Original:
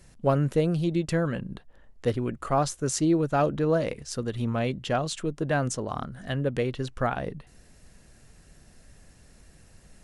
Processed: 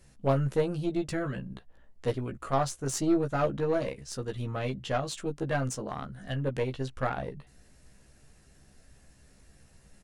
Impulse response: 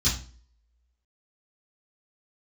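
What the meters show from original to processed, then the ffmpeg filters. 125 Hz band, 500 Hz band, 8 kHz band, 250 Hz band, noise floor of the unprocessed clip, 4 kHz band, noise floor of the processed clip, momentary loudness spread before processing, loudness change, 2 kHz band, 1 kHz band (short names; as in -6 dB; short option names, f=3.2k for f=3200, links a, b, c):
-4.0 dB, -3.5 dB, -4.0 dB, -4.5 dB, -55 dBFS, -4.0 dB, -60 dBFS, 10 LU, -4.0 dB, -3.5 dB, -3.5 dB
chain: -filter_complex "[0:a]asplit=2[a][b];[b]adelay=15,volume=-4dB[c];[a][c]amix=inputs=2:normalize=0,aeval=exprs='0.376*(cos(1*acos(clip(val(0)/0.376,-1,1)))-cos(1*PI/2))+0.0266*(cos(6*acos(clip(val(0)/0.376,-1,1)))-cos(6*PI/2))':c=same,volume=-5.5dB"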